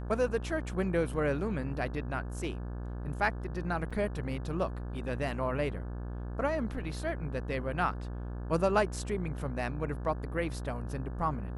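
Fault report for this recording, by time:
mains buzz 60 Hz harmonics 29 −38 dBFS
0:03.90–0:03.91: drop-out 5.6 ms

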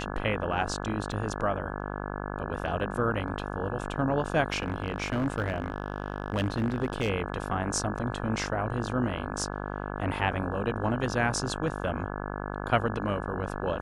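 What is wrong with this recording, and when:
mains buzz 50 Hz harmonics 34 −35 dBFS
0:01.12: drop-out 2.7 ms
0:04.50–0:07.10: clipping −22.5 dBFS

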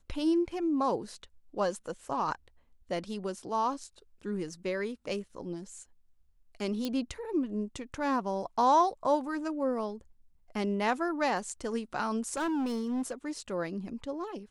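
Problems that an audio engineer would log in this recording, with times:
0:06.85: click −19 dBFS
0:12.33–0:13.30: clipping −28.5 dBFS

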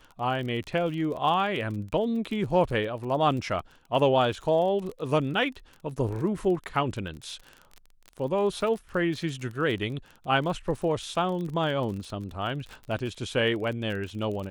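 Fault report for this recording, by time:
surface crackle 32 per second −34 dBFS

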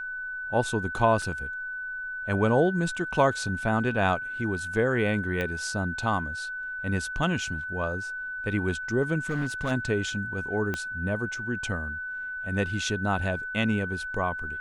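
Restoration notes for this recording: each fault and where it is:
whistle 1,500 Hz −32 dBFS
0:01.22: drop-out 2.6 ms
0:05.41: click −17 dBFS
0:09.29–0:09.72: clipping −23.5 dBFS
0:10.74: click −16 dBFS

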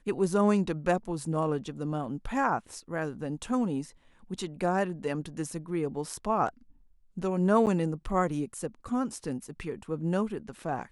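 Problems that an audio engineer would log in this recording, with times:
0:07.66–0:07.67: drop-out 8.7 ms

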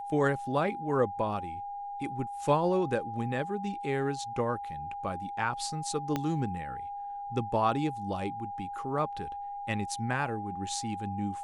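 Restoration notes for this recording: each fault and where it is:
whistle 810 Hz −36 dBFS
0:06.16: click −16 dBFS

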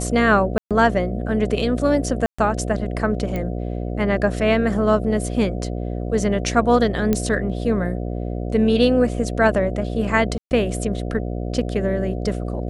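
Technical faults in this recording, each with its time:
mains buzz 60 Hz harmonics 12 −26 dBFS
0:00.58–0:00.71: drop-out 127 ms
0:02.26–0:02.38: drop-out 125 ms
0:03.36: click −14 dBFS
0:07.13: click −7 dBFS
0:10.38–0:10.51: drop-out 129 ms

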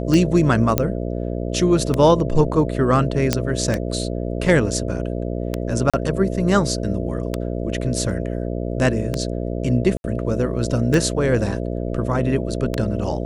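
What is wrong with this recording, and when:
mains buzz 60 Hz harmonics 11 −25 dBFS
scratch tick 33 1/3 rpm −7 dBFS
0:00.78: click −2 dBFS
0:03.33: click −2 dBFS
0:05.90–0:05.94: drop-out 36 ms
0:09.97–0:10.04: drop-out 71 ms

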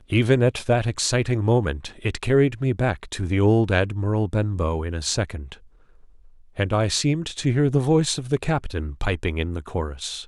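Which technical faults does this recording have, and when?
0:01.93: drop-out 3.8 ms

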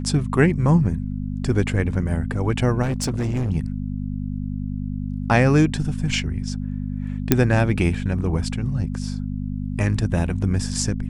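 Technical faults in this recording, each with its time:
mains hum 50 Hz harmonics 5 −27 dBFS
0:02.82–0:03.51: clipping −19.5 dBFS
0:07.32: click 0 dBFS

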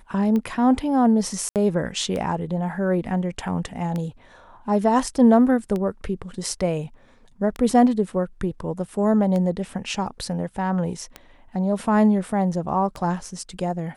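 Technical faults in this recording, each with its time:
scratch tick 33 1/3 rpm −16 dBFS
0:01.49–0:01.56: drop-out 68 ms

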